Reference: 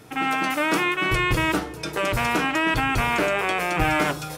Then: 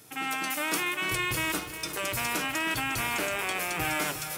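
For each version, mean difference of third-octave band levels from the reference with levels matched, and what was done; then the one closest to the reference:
5.5 dB: high-pass filter 64 Hz
first-order pre-emphasis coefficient 0.8
feedback echo at a low word length 356 ms, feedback 55%, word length 8 bits, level −11 dB
level +3 dB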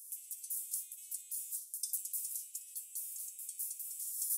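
30.5 dB: downward compressor 6 to 1, threshold −26 dBFS, peak gain reduction 9.5 dB
inverse Chebyshev high-pass filter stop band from 1,600 Hz, stop band 80 dB
flutter between parallel walls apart 10.3 metres, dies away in 0.22 s
level +10.5 dB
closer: first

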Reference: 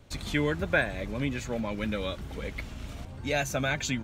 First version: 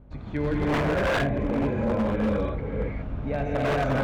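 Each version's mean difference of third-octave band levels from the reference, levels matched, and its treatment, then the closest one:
9.0 dB: mains hum 50 Hz, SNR 18 dB
low-pass filter 1,100 Hz 12 dB per octave
reverb whose tail is shaped and stops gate 440 ms rising, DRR −8 dB
wave folding −18.5 dBFS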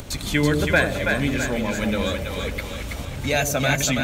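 5.0 dB: high-shelf EQ 7,300 Hz +10.5 dB
upward compression, threshold −33 dBFS
echo with a time of its own for lows and highs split 540 Hz, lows 88 ms, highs 328 ms, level −4 dB
level +6 dB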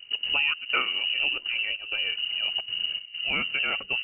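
19.0 dB: low-shelf EQ 120 Hz +11.5 dB
gate pattern "xx.xxxx..xxxxxxx" 196 BPM −12 dB
voice inversion scrambler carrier 2,900 Hz
parametric band 840 Hz −5.5 dB 1.6 octaves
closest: second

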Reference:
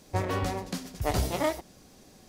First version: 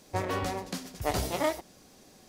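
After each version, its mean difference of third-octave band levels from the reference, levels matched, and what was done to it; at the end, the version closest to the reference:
1.5 dB: low-shelf EQ 170 Hz −7 dB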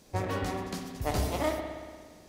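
4.0 dB: spring reverb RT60 1.7 s, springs 58 ms, chirp 35 ms, DRR 4 dB
level −3 dB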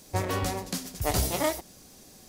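2.5 dB: high-shelf EQ 5,400 Hz +11 dB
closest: first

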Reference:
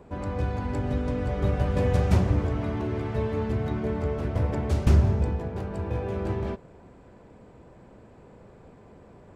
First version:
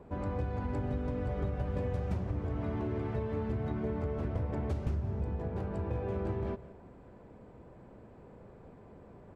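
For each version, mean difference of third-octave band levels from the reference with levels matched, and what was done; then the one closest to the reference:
3.0 dB: single-tap delay 176 ms −20.5 dB
downward compressor 10 to 1, threshold −27 dBFS, peak gain reduction 13.5 dB
high-shelf EQ 2,800 Hz −9.5 dB
level −2.5 dB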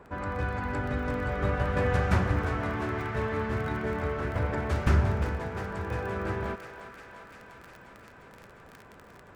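5.0 dB: surface crackle 15 per second −33 dBFS
parametric band 1,500 Hz +13 dB 1.4 octaves
on a send: feedback echo with a high-pass in the loop 352 ms, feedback 82%, high-pass 670 Hz, level −9.5 dB
on the sum: level −4.5 dB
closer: first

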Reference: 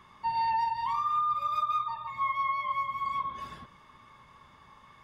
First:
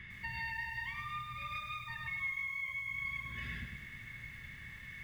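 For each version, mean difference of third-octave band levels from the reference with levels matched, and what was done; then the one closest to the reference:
10.5 dB: drawn EQ curve 110 Hz 0 dB, 1,100 Hz −29 dB, 1,900 Hz +7 dB, 2,900 Hz −5 dB, 5,600 Hz −17 dB
downward compressor 6 to 1, threshold −50 dBFS, peak gain reduction 15 dB
feedback echo at a low word length 103 ms, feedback 55%, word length 12 bits, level −6.5 dB
level +11.5 dB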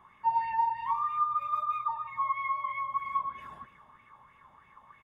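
4.5 dB: parametric band 4,700 Hz −13.5 dB 0.85 octaves
single-tap delay 258 ms −14.5 dB
auto-filter bell 3.1 Hz 740–2,500 Hz +13 dB
level −7 dB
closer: second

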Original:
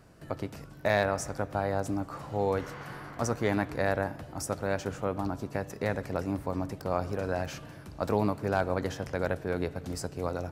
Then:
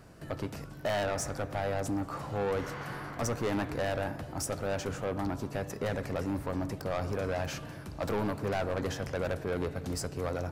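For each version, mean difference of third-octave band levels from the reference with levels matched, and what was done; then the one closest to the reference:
3.5 dB: soft clipping −29 dBFS, distortion −6 dB
level +3 dB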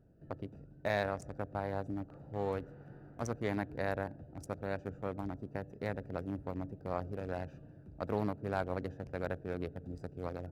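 5.5 dB: adaptive Wiener filter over 41 samples
level −6.5 dB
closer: first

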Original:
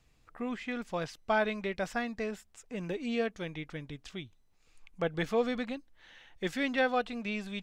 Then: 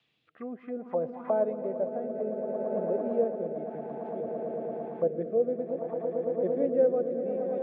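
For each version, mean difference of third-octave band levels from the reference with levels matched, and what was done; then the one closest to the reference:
13.5 dB: Bessel high-pass filter 170 Hz, order 8
on a send: echo that builds up and dies away 113 ms, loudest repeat 8, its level −11.5 dB
on the sum: rotating-speaker cabinet horn 0.6 Hz
envelope-controlled low-pass 560–3,400 Hz down, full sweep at −33.5 dBFS
level −1.5 dB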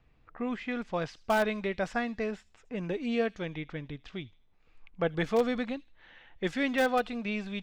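2.0 dB: low-pass that shuts in the quiet parts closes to 2,800 Hz, open at −27 dBFS
delay with a high-pass on its return 78 ms, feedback 36%, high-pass 3,600 Hz, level −16 dB
in parallel at −8.5 dB: wrap-around overflow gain 20 dB
on the sum: high-shelf EQ 4,300 Hz −6.5 dB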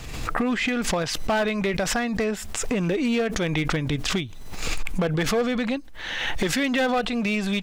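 7.0 dB: camcorder AGC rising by 31 dB per second
in parallel at −10 dB: bit reduction 4 bits
on the sum: gain into a clipping stage and back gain 26 dB
background raised ahead of every attack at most 39 dB per second
level +7.5 dB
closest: second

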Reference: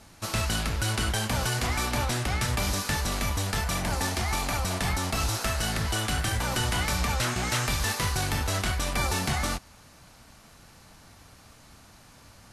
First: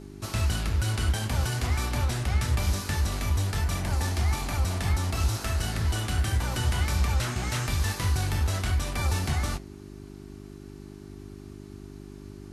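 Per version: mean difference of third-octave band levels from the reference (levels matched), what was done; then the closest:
4.5 dB: parametric band 77 Hz +12 dB 1.1 octaves
hum with harmonics 50 Hz, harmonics 8, −39 dBFS −1 dB per octave
flanger 0.53 Hz, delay 6.4 ms, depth 9.7 ms, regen −87%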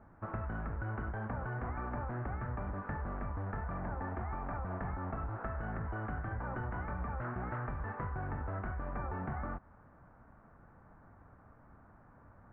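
13.5 dB: Butterworth low-pass 1,600 Hz 36 dB per octave
downward compressor, threshold −30 dBFS, peak gain reduction 6.5 dB
level −5 dB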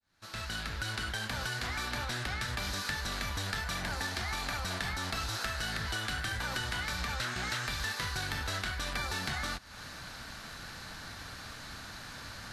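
5.5 dB: fade in at the beginning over 3.50 s
graphic EQ with 15 bands 1,600 Hz +10 dB, 4,000 Hz +8 dB, 10,000 Hz −3 dB
downward compressor 10 to 1, threshold −37 dBFS, peak gain reduction 18 dB
level +4.5 dB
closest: first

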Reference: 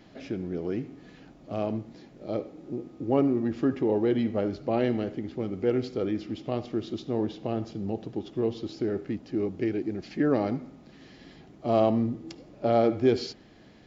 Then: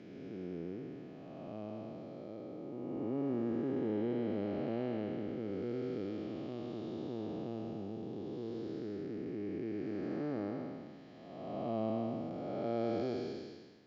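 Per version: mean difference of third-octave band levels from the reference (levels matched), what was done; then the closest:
6.0 dB: spectrum smeared in time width 597 ms
high-pass filter 110 Hz
high-frequency loss of the air 51 metres
level −6 dB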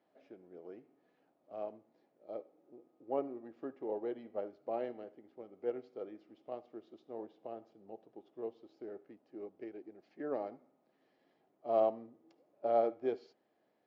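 8.0 dB: resonant band-pass 620 Hz, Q 1.3
spectral tilt +2 dB per octave
expander for the loud parts 1.5 to 1, over −44 dBFS
level −3.5 dB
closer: first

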